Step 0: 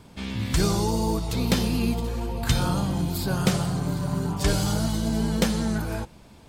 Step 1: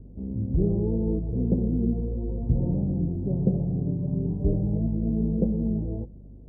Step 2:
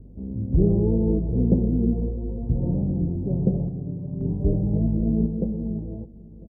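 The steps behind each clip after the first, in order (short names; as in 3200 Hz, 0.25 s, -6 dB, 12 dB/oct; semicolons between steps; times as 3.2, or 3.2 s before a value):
hum 50 Hz, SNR 21 dB; inverse Chebyshev low-pass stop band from 1300 Hz, stop band 50 dB
feedback echo 0.501 s, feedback 52%, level -18 dB; random-step tremolo 1.9 Hz, depth 65%; gain +4.5 dB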